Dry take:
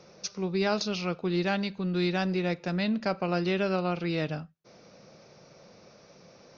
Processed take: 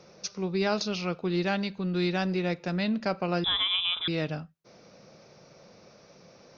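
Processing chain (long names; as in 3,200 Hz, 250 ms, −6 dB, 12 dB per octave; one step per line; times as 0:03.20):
0:03.44–0:04.08: voice inversion scrambler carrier 3,700 Hz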